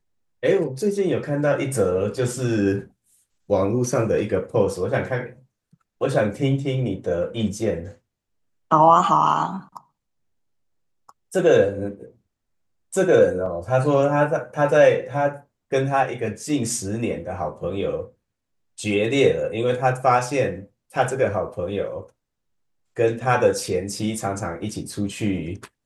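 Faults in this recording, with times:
13.46 gap 2.9 ms

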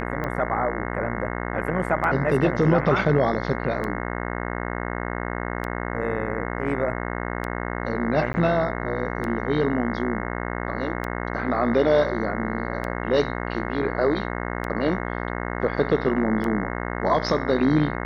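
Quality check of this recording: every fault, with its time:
buzz 60 Hz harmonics 36 -29 dBFS
tick 33 1/3 rpm -17 dBFS
8.33–8.34 gap 10 ms

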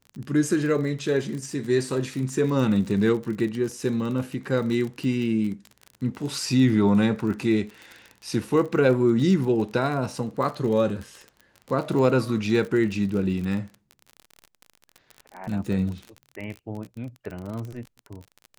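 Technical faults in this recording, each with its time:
crackle 39/s -31 dBFS

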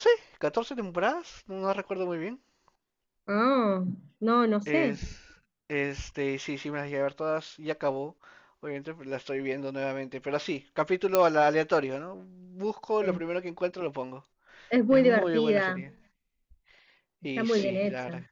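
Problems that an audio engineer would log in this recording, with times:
11.15 pop -8 dBFS

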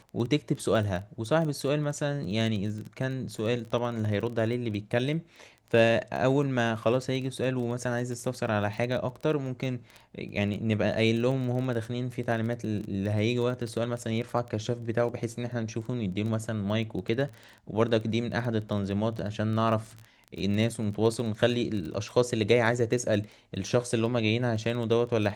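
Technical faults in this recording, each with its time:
crackle 14/s -33 dBFS

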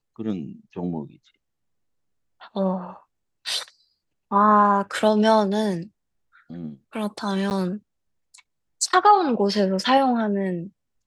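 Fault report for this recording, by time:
7.5–7.51 gap 9.9 ms

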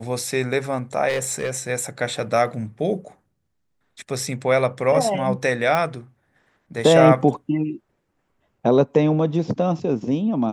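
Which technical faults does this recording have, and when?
1.08–1.69 clipped -18.5 dBFS
5.75 pop -10 dBFS

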